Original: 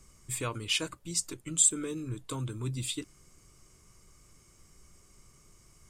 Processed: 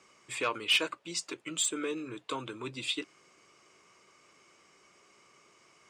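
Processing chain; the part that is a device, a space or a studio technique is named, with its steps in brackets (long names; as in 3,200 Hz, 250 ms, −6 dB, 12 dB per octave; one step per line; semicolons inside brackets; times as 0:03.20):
intercom (band-pass filter 430–3,800 Hz; parametric band 2,600 Hz +4 dB 0.38 octaves; soft clipping −25 dBFS, distortion −14 dB)
level +6.5 dB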